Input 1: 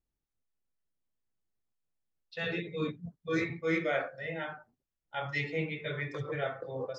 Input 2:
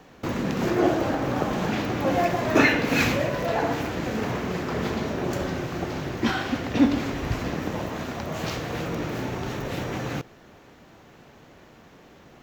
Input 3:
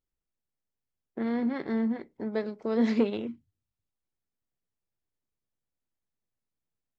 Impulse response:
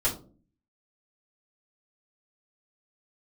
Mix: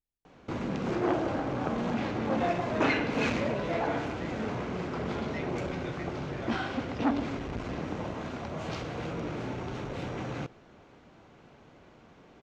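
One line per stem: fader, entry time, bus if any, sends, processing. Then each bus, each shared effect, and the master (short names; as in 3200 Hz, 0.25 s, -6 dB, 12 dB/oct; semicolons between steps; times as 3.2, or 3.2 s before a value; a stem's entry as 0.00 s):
-8.0 dB, 0.00 s, no send, dry
-4.5 dB, 0.25 s, no send, LPF 9800 Hz 24 dB/oct; high shelf 5800 Hz -11 dB; notch 1800 Hz, Q 13
-3.0 dB, 0.50 s, no send, limiter -23.5 dBFS, peak gain reduction 9.5 dB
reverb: off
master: core saturation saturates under 1100 Hz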